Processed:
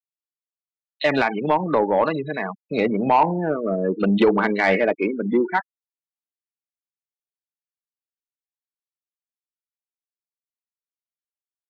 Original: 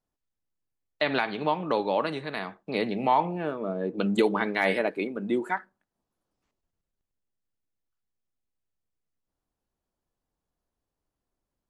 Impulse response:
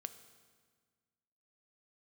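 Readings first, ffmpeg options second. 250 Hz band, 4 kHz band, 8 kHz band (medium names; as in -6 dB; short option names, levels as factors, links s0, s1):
+7.5 dB, +1.5 dB, no reading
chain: -filter_complex "[0:a]afftfilt=real='re*gte(hypot(re,im),0.0398)':imag='im*gte(hypot(re,im),0.0398)':win_size=1024:overlap=0.75,acrossover=split=3600[s0][s1];[s0]adelay=30[s2];[s2][s1]amix=inputs=2:normalize=0,asoftclip=type=tanh:threshold=0.15,volume=2.66"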